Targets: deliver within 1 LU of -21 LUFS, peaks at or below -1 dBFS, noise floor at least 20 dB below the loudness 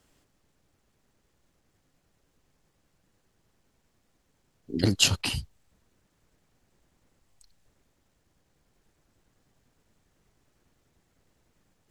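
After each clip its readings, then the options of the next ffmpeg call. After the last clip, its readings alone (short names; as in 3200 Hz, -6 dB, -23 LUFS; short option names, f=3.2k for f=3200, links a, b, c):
loudness -26.0 LUFS; peak -6.5 dBFS; loudness target -21.0 LUFS
-> -af "volume=5dB"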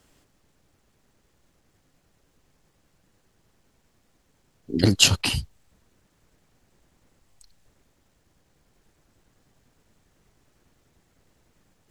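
loudness -21.0 LUFS; peak -1.5 dBFS; noise floor -67 dBFS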